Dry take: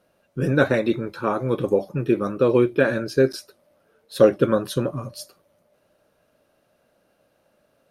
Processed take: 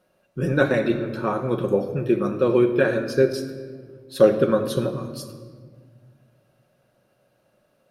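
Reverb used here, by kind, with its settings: shoebox room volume 2200 m³, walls mixed, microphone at 1 m; gain -2 dB

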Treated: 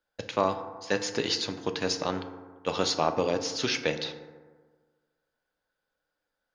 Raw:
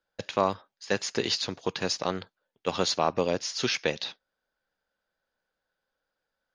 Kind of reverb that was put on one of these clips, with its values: FDN reverb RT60 1.5 s, low-frequency decay 1×, high-frequency decay 0.35×, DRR 7 dB; gain -1 dB

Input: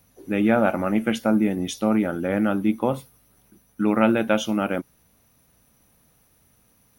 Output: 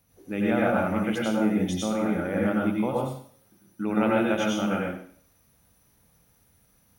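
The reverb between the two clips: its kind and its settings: plate-style reverb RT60 0.53 s, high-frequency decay 1×, pre-delay 80 ms, DRR -3.5 dB; gain -7.5 dB

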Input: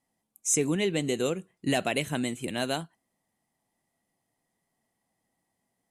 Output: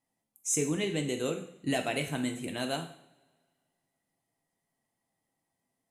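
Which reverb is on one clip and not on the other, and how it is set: two-slope reverb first 0.59 s, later 1.9 s, from -22 dB, DRR 4 dB; gain -5 dB

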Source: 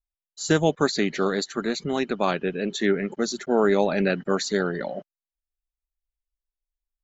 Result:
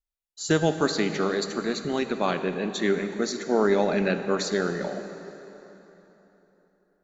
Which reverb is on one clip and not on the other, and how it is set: plate-style reverb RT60 3.7 s, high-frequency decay 0.75×, DRR 8 dB; gain -2 dB

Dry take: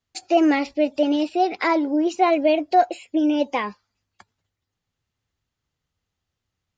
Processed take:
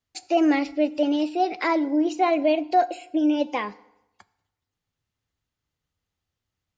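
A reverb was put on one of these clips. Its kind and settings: FDN reverb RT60 0.88 s, low-frequency decay 0.95×, high-frequency decay 0.75×, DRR 15.5 dB; gain -3 dB

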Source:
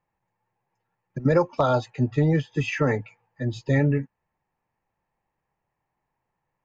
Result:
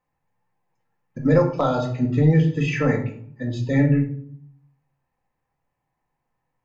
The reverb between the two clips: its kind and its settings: shoebox room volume 760 m³, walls furnished, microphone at 2 m; gain -1.5 dB

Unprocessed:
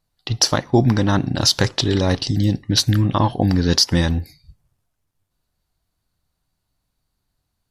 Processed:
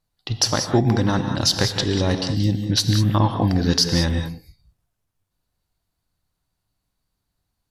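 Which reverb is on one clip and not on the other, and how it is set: non-linear reverb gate 0.22 s rising, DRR 6 dB; gain -3 dB

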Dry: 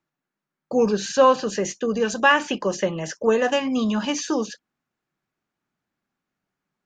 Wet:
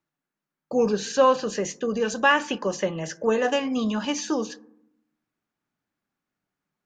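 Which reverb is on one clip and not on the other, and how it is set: FDN reverb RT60 0.75 s, low-frequency decay 1.45×, high-frequency decay 0.3×, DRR 16.5 dB; gain -2.5 dB

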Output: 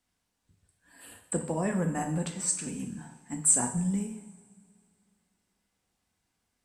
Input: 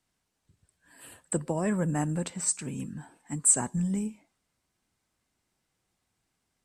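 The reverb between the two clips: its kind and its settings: two-slope reverb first 0.64 s, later 2.4 s, from -19 dB, DRR 3 dB; gain -2 dB

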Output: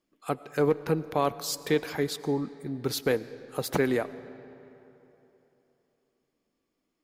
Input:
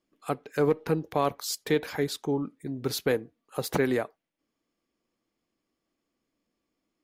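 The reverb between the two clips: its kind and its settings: digital reverb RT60 3.3 s, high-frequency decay 0.65×, pre-delay 60 ms, DRR 16 dB

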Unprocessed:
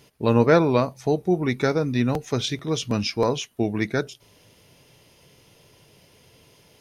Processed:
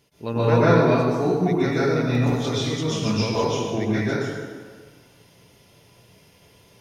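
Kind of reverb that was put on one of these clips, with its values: plate-style reverb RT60 1.6 s, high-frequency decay 0.7×, pre-delay 0.11 s, DRR -10 dB; gain -9 dB

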